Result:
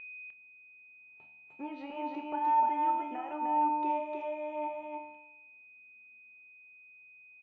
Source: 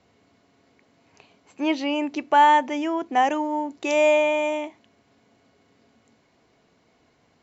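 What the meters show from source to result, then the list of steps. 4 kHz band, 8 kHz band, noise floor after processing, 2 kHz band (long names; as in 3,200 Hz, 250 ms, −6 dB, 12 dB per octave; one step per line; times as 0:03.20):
below −20 dB, can't be measured, −57 dBFS, −17.5 dB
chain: high-shelf EQ 6,800 Hz +9 dB
noise gate −52 dBFS, range −17 dB
brickwall limiter −18.5 dBFS, peak gain reduction 11.5 dB
downward compressor, threshold −28 dBFS, peak gain reduction 6 dB
pitch vibrato 0.52 Hz 7 cents
tuned comb filter 75 Hz, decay 0.85 s, harmonics all, mix 80%
hollow resonant body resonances 890/1,300 Hz, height 15 dB, ringing for 90 ms
steady tone 2,500 Hz −38 dBFS
high-frequency loss of the air 500 metres
double-tracking delay 28 ms −14 dB
on a send: single-tap delay 303 ms −3 dB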